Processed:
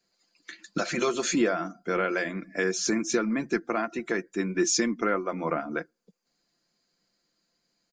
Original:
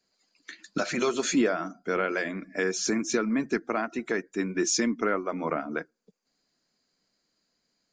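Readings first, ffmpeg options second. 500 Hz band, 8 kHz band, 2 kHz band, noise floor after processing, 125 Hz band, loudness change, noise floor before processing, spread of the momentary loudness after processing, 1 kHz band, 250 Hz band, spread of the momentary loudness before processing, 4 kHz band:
+0.5 dB, +1.0 dB, +0.5 dB, -77 dBFS, +2.0 dB, +0.5 dB, -78 dBFS, 9 LU, +0.5 dB, 0.0 dB, 9 LU, +0.5 dB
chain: -af "aecho=1:1:5.8:0.38"

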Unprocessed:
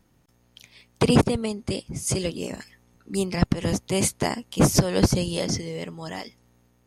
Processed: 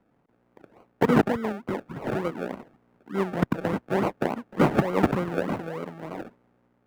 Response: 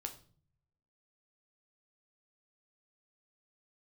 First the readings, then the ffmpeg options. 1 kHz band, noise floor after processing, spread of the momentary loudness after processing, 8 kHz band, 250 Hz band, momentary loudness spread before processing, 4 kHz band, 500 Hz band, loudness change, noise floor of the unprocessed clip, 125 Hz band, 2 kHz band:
+3.0 dB, -67 dBFS, 14 LU, under -20 dB, -1.5 dB, 15 LU, -13.5 dB, -0.5 dB, -2.5 dB, -63 dBFS, -6.0 dB, +1.0 dB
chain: -filter_complex "[0:a]acrusher=samples=35:mix=1:aa=0.000001:lfo=1:lforange=21:lforate=3.4,acrossover=split=160 2200:gain=0.178 1 0.141[a][b][c];[a][b][c]amix=inputs=3:normalize=0"

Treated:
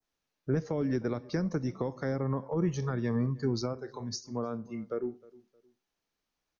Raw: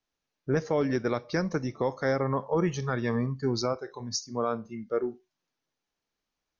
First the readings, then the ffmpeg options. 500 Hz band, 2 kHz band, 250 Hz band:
-5.5 dB, -8.5 dB, -1.5 dB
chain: -filter_complex "[0:a]adynamicequalizer=threshold=0.00316:dfrequency=3000:dqfactor=1:tfrequency=3000:tqfactor=1:attack=5:release=100:ratio=0.375:range=2.5:mode=cutabove:tftype=bell,acrossover=split=340[a][b];[b]acompressor=threshold=-36dB:ratio=6[c];[a][c]amix=inputs=2:normalize=0,asplit=2[d][e];[e]adelay=310,lowpass=f=1.4k:p=1,volume=-21.5dB,asplit=2[f][g];[g]adelay=310,lowpass=f=1.4k:p=1,volume=0.31[h];[d][f][h]amix=inputs=3:normalize=0"

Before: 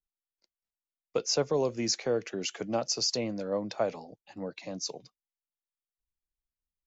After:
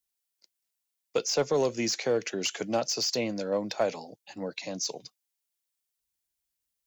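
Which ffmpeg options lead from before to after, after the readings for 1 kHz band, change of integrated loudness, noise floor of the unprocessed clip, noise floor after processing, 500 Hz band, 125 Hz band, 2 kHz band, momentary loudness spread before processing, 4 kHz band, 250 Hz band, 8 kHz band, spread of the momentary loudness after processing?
+2.5 dB, +2.0 dB, under -85 dBFS, -84 dBFS, +2.0 dB, -0.5 dB, +5.0 dB, 13 LU, +1.0 dB, +1.5 dB, n/a, 11 LU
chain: -filter_complex "[0:a]highpass=f=130:p=1,highshelf=f=3.2k:g=11,bandreject=f=1.2k:w=12,asplit=2[a][b];[b]aeval=exprs='0.0794*(abs(mod(val(0)/0.0794+3,4)-2)-1)':c=same,volume=-9dB[c];[a][c]amix=inputs=2:normalize=0,acrossover=split=2800[d][e];[e]acompressor=threshold=-28dB:ratio=4:attack=1:release=60[f];[d][f]amix=inputs=2:normalize=0"

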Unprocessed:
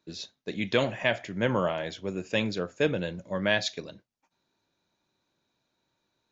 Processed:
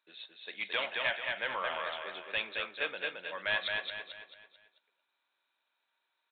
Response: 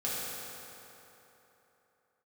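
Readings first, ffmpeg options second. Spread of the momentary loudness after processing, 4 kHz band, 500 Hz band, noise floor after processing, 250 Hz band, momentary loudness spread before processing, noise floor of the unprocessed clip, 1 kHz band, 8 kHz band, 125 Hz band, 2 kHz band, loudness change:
14 LU, -2.0 dB, -12.0 dB, -83 dBFS, -23.5 dB, 11 LU, -80 dBFS, -3.0 dB, n/a, -26.0 dB, -1.0 dB, -5.5 dB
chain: -af "highpass=1.1k,aresample=8000,asoftclip=type=tanh:threshold=-23dB,aresample=44100,aecho=1:1:220|440|660|880|1100:0.668|0.274|0.112|0.0461|0.0189" -ar 48000 -c:a aac -b:a 128k

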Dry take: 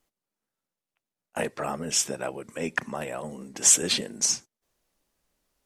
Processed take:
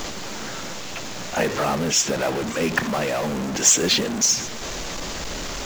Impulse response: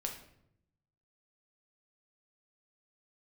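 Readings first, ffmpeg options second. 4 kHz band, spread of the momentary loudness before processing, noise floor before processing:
+7.0 dB, 16 LU, under -85 dBFS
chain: -af "aeval=exprs='val(0)+0.5*0.0531*sgn(val(0))':c=same,aresample=16000,aresample=44100,acrusher=bits=4:mode=log:mix=0:aa=0.000001,volume=3.5dB"

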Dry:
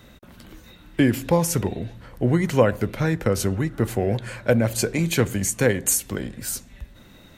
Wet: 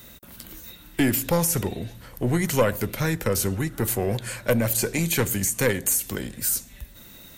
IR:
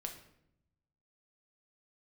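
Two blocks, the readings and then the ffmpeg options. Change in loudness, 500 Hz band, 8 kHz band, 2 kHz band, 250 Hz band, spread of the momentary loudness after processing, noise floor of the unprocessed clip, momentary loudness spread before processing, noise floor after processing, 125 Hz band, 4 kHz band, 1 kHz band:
-1.5 dB, -3.0 dB, +1.0 dB, -0.5 dB, -3.0 dB, 18 LU, -49 dBFS, 10 LU, -47 dBFS, -3.0 dB, +0.5 dB, -1.5 dB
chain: -filter_complex "[0:a]acrossover=split=2700[a][b];[b]acompressor=threshold=-32dB:ratio=4:attack=1:release=60[c];[a][c]amix=inputs=2:normalize=0,aeval=exprs='(tanh(3.16*val(0)+0.35)-tanh(0.35))/3.16':c=same,aemphasis=mode=production:type=75fm"

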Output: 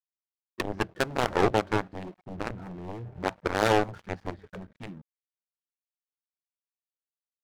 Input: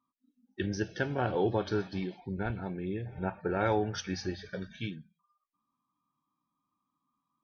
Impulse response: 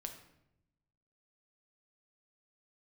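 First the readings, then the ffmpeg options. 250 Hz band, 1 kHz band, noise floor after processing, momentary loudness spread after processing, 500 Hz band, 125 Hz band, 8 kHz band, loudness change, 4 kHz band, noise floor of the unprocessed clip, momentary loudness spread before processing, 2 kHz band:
+1.0 dB, +6.5 dB, under -85 dBFS, 20 LU, +3.5 dB, -0.5 dB, n/a, +4.5 dB, +5.5 dB, -85 dBFS, 11 LU, +6.0 dB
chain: -af "aeval=exprs='0.158*(cos(1*acos(clip(val(0)/0.158,-1,1)))-cos(1*PI/2))+0.00562*(cos(5*acos(clip(val(0)/0.158,-1,1)))-cos(5*PI/2))+0.0447*(cos(7*acos(clip(val(0)/0.158,-1,1)))-cos(7*PI/2))':c=same,adynamicsmooth=sensitivity=4.5:basefreq=1k,aeval=exprs='sgn(val(0))*max(abs(val(0))-0.00168,0)':c=same,volume=5.5dB"

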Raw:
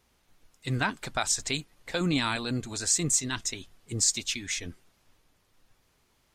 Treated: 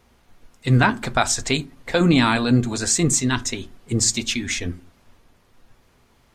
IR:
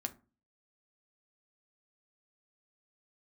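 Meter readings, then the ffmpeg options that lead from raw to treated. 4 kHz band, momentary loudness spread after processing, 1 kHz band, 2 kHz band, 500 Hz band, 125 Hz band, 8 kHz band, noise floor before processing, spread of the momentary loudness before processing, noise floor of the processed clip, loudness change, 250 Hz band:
+6.0 dB, 10 LU, +11.0 dB, +9.0 dB, +11.5 dB, +12.5 dB, +4.5 dB, -69 dBFS, 10 LU, -59 dBFS, +8.0 dB, +12.5 dB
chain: -filter_complex "[0:a]highshelf=f=2.6k:g=-8,asplit=2[a][b];[1:a]atrim=start_sample=2205[c];[b][c]afir=irnorm=-1:irlink=0,volume=2dB[d];[a][d]amix=inputs=2:normalize=0,volume=5.5dB"

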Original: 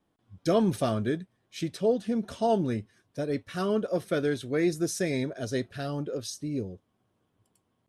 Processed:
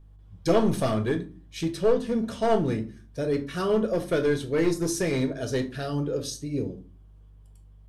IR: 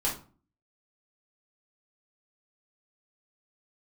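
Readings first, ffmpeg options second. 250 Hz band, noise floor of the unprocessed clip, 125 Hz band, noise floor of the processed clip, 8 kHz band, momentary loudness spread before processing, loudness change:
+2.0 dB, -75 dBFS, +3.0 dB, -51 dBFS, +2.5 dB, 9 LU, +3.0 dB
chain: -filter_complex "[0:a]aeval=exprs='clip(val(0),-1,0.0794)':c=same,aeval=exprs='val(0)+0.002*(sin(2*PI*50*n/s)+sin(2*PI*2*50*n/s)/2+sin(2*PI*3*50*n/s)/3+sin(2*PI*4*50*n/s)/4+sin(2*PI*5*50*n/s)/5)':c=same,asplit=2[a][b];[1:a]atrim=start_sample=2205[c];[b][c]afir=irnorm=-1:irlink=0,volume=-9.5dB[d];[a][d]amix=inputs=2:normalize=0"

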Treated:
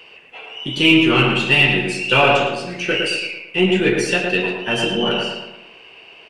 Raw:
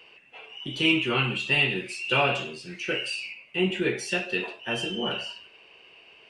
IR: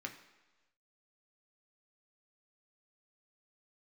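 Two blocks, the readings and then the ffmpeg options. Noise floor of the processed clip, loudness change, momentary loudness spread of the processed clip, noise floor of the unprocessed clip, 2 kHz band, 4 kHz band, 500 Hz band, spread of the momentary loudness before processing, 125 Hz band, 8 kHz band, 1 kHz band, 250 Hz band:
-45 dBFS, +10.0 dB, 13 LU, -54 dBFS, +9.5 dB, +9.0 dB, +11.0 dB, 14 LU, +10.0 dB, +9.0 dB, +11.0 dB, +11.5 dB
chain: -filter_complex "[0:a]aeval=exprs='0.316*(cos(1*acos(clip(val(0)/0.316,-1,1)))-cos(1*PI/2))+0.00398*(cos(8*acos(clip(val(0)/0.316,-1,1)))-cos(8*PI/2))':c=same,asplit=2[a][b];[b]adelay=112,lowpass=f=2.1k:p=1,volume=-3dB,asplit=2[c][d];[d]adelay=112,lowpass=f=2.1k:p=1,volume=0.49,asplit=2[e][f];[f]adelay=112,lowpass=f=2.1k:p=1,volume=0.49,asplit=2[g][h];[h]adelay=112,lowpass=f=2.1k:p=1,volume=0.49,asplit=2[i][j];[j]adelay=112,lowpass=f=2.1k:p=1,volume=0.49,asplit=2[k][l];[l]adelay=112,lowpass=f=2.1k:p=1,volume=0.49[m];[a][c][e][g][i][k][m]amix=inputs=7:normalize=0,volume=8.5dB"

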